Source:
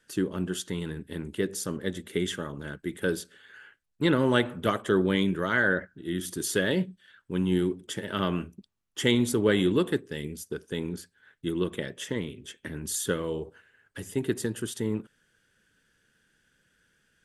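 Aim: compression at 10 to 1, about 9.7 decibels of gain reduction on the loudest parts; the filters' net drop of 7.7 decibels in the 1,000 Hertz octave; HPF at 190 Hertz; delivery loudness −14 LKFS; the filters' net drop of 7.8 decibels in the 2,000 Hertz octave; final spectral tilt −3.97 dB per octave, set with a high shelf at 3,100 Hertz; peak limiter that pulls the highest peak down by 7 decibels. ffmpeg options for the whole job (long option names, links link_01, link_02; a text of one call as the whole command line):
ffmpeg -i in.wav -af "highpass=190,equalizer=frequency=1000:width_type=o:gain=-7.5,equalizer=frequency=2000:width_type=o:gain=-8.5,highshelf=frequency=3100:gain=3.5,acompressor=threshold=-30dB:ratio=10,volume=24dB,alimiter=limit=-2dB:level=0:latency=1" out.wav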